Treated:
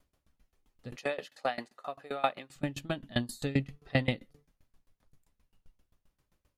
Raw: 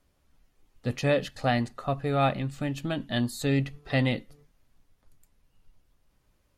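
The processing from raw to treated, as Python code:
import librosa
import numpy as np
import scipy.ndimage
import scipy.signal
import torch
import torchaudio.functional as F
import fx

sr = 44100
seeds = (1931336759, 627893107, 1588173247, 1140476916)

y = fx.highpass(x, sr, hz=460.0, slope=12, at=(0.96, 2.56))
y = fx.tremolo_decay(y, sr, direction='decaying', hz=7.6, depth_db=24)
y = y * 10.0 ** (2.0 / 20.0)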